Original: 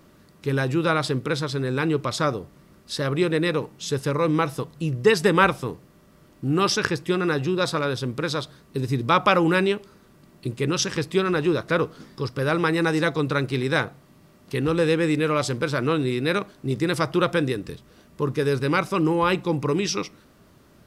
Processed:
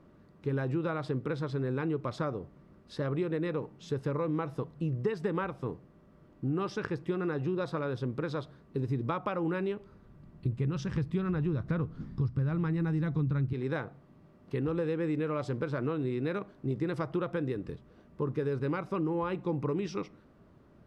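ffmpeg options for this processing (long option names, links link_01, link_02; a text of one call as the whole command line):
ffmpeg -i in.wav -filter_complex "[0:a]asettb=1/sr,asplit=3[link_01][link_02][link_03];[link_01]atrim=end=9.544[link_04];[link_02]atrim=start=9.54:end=13.53,asetpts=PTS-STARTPTS,afade=type=in:duration=0.004:curve=qsin,afade=type=out:start_time=3.986:duration=0.004:curve=qsin,asubboost=boost=11.5:cutoff=160[link_05];[link_03]atrim=start=13.526[link_06];[link_04][link_05]acrossfade=duration=0.004:curve1=hsin:curve2=qsin[link_07];[link_07][link_06]acrossfade=duration=0.004:curve1=qsin:curve2=hsin,acompressor=threshold=-23dB:ratio=6,lowpass=frequency=3100:poles=1,highshelf=frequency=2000:gain=-11.5,volume=-4dB" out.wav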